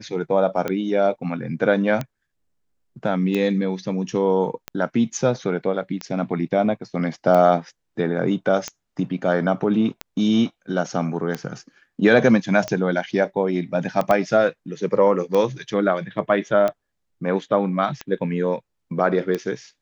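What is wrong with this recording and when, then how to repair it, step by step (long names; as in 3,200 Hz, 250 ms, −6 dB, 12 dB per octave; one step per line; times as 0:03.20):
scratch tick 45 rpm −12 dBFS
0:14.11: click −8 dBFS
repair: click removal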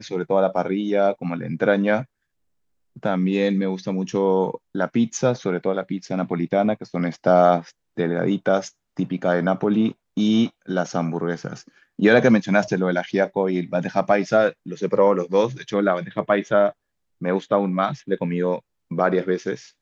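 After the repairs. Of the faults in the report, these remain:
0:14.11: click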